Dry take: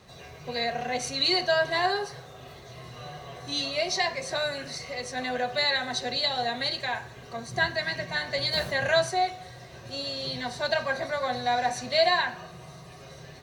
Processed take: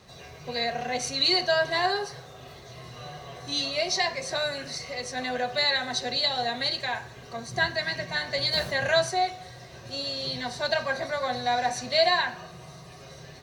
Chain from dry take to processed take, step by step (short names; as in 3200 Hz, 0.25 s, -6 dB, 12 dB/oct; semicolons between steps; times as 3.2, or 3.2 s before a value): bell 5200 Hz +3 dB 0.75 oct